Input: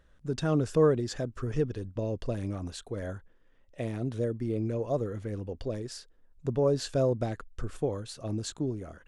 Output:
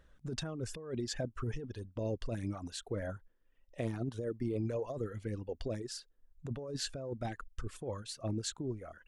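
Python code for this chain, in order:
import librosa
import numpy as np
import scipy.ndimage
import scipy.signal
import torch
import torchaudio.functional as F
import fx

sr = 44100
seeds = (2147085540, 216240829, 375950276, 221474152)

y = fx.dereverb_blind(x, sr, rt60_s=1.3)
y = fx.over_compress(y, sr, threshold_db=-33.0, ratio=-1.0)
y = F.gain(torch.from_numpy(y), -3.5).numpy()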